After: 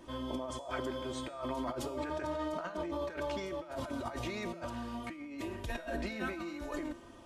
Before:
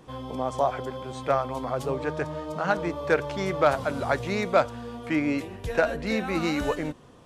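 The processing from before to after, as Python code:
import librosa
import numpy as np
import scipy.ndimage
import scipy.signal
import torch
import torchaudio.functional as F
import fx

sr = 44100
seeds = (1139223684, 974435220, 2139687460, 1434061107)

y = x + 0.75 * np.pad(x, (int(3.2 * sr / 1000.0), 0))[:len(x)]
y = fx.over_compress(y, sr, threshold_db=-31.0, ratio=-1.0)
y = fx.comb_fb(y, sr, f0_hz=170.0, decay_s=1.0, harmonics='all', damping=0.0, mix_pct=70)
y = y * librosa.db_to_amplitude(1.0)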